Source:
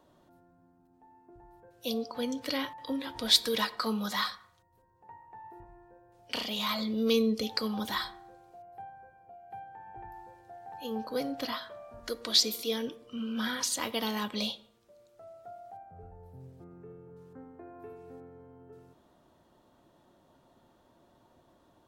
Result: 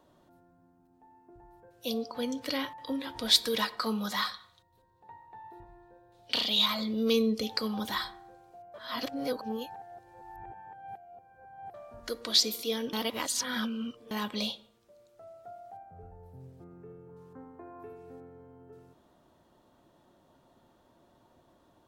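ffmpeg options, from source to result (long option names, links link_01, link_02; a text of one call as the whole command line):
ffmpeg -i in.wav -filter_complex "[0:a]asettb=1/sr,asplit=3[link_01][link_02][link_03];[link_01]atrim=end=4.344[link_04];[link_02]atrim=start=4.34:end=6.66,asetpts=PTS-STARTPTS,afade=type=in:duration=0.004:curve=qsin,afade=type=out:start_time=2.316:duration=0.004:curve=qsin,equalizer=frequency=3800:width=2.7:gain=13[link_05];[link_03]atrim=start=6.656[link_06];[link_04][link_05]acrossfade=duration=0.004:curve1=hsin:curve2=qsin[link_07];[link_07][link_06]acrossfade=duration=0.004:curve1=qsin:curve2=hsin,asettb=1/sr,asplit=3[link_08][link_09][link_10];[link_08]atrim=end=17.094[link_11];[link_09]atrim=start=17.09:end=17.83,asetpts=PTS-STARTPTS,afade=type=in:duration=0.004:curve=qsin,afade=type=out:start_time=0.736:duration=0.004:curve=qsin,equalizer=frequency=1000:width_type=o:width=0.36:gain=9[link_12];[link_10]atrim=start=17.826[link_13];[link_11][link_12]acrossfade=duration=0.004:curve1=hsin:curve2=qsin[link_14];[link_14][link_13]acrossfade=duration=0.004:curve1=qsin:curve2=hsin,asplit=5[link_15][link_16][link_17][link_18][link_19];[link_15]atrim=end=8.742[link_20];[link_16]atrim=start=8.738:end=11.742,asetpts=PTS-STARTPTS,areverse[link_21];[link_17]atrim=start=11.738:end=12.932[link_22];[link_18]atrim=start=12.928:end=14.112,asetpts=PTS-STARTPTS,areverse[link_23];[link_19]atrim=start=14.108[link_24];[link_20][link_21]acrossfade=duration=0.004:curve1=hsin:curve2=hsin[link_25];[link_25][link_22]acrossfade=duration=0.004:curve1=hsin:curve2=hsin[link_26];[link_26][link_23]acrossfade=duration=0.004:curve1=hsin:curve2=hsin[link_27];[link_27][link_24]acrossfade=duration=0.004:curve1=hsin:curve2=hsin" out.wav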